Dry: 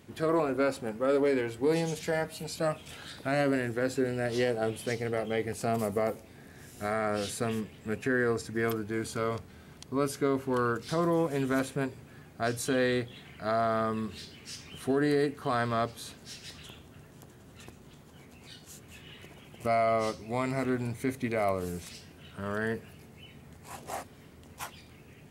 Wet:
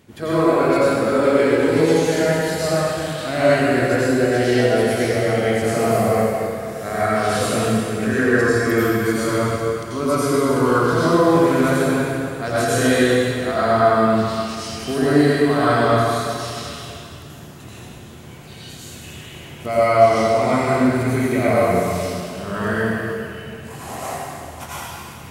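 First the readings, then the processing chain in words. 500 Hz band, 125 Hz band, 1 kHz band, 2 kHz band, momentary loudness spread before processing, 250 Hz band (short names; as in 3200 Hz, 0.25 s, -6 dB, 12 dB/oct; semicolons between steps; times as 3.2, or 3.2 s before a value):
+13.0 dB, +13.5 dB, +13.5 dB, +13.0 dB, 20 LU, +13.0 dB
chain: plate-style reverb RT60 2.5 s, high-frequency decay 0.9×, pre-delay 75 ms, DRR -10 dB; gain +2.5 dB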